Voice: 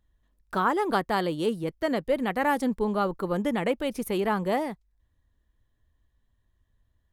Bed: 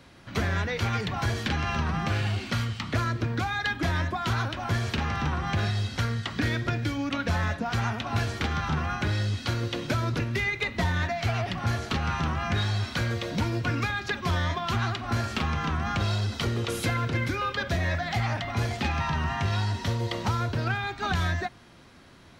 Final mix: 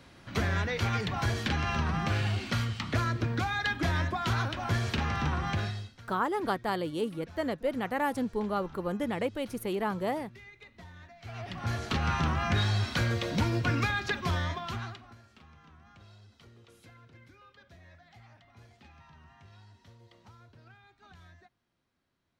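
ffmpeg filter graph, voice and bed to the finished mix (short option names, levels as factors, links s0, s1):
-filter_complex "[0:a]adelay=5550,volume=0.562[s0];[1:a]volume=11.2,afade=t=out:st=5.45:d=0.49:silence=0.0841395,afade=t=in:st=11.2:d=0.89:silence=0.0707946,afade=t=out:st=13.98:d=1.17:silence=0.0421697[s1];[s0][s1]amix=inputs=2:normalize=0"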